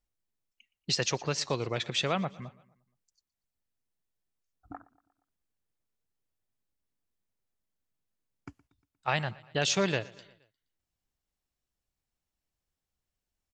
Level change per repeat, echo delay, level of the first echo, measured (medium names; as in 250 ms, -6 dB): -5.5 dB, 118 ms, -21.5 dB